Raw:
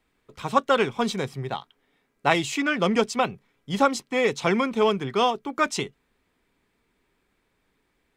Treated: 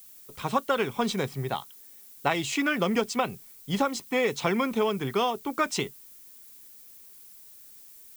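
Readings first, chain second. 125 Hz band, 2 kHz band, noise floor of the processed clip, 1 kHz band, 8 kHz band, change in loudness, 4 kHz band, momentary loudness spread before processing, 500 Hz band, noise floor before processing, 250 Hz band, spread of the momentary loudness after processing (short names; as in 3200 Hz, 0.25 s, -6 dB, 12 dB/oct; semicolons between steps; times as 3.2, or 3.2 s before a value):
-1.5 dB, -3.5 dB, -50 dBFS, -4.5 dB, -1.0 dB, -3.5 dB, -3.0 dB, 10 LU, -4.0 dB, -72 dBFS, -2.5 dB, 20 LU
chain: compressor, threshold -21 dBFS, peak gain reduction 8 dB; added noise violet -50 dBFS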